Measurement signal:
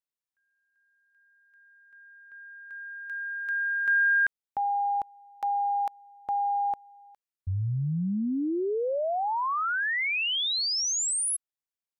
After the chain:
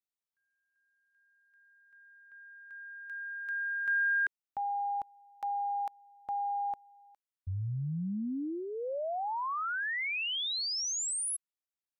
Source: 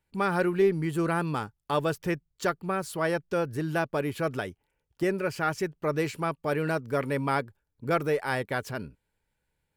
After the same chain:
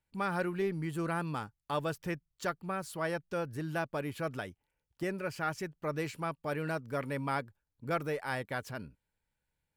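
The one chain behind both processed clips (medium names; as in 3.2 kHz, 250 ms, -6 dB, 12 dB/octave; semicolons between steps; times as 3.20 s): peaking EQ 400 Hz -5 dB 0.46 oct; trim -6 dB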